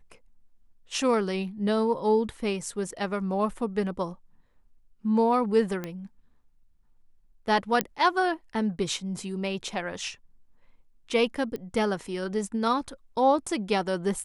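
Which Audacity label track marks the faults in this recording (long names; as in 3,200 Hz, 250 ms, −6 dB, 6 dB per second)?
5.840000	5.840000	click −19 dBFS
7.810000	7.810000	click −8 dBFS
11.560000	11.560000	click −22 dBFS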